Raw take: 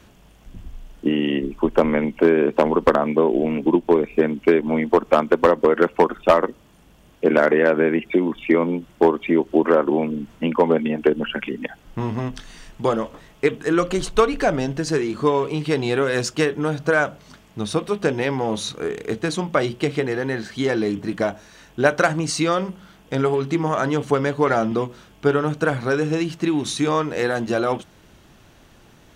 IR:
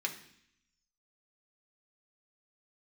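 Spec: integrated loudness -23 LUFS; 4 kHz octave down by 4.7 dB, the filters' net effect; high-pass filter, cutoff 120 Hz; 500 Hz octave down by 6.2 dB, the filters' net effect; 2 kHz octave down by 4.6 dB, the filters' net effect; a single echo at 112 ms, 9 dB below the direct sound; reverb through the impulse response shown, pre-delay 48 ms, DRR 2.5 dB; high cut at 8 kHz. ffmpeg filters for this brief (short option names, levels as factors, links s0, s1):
-filter_complex "[0:a]highpass=120,lowpass=8000,equalizer=f=500:t=o:g=-7.5,equalizer=f=2000:t=o:g=-5,equalizer=f=4000:t=o:g=-4,aecho=1:1:112:0.355,asplit=2[s0][s1];[1:a]atrim=start_sample=2205,adelay=48[s2];[s1][s2]afir=irnorm=-1:irlink=0,volume=0.501[s3];[s0][s3]amix=inputs=2:normalize=0,volume=1.06"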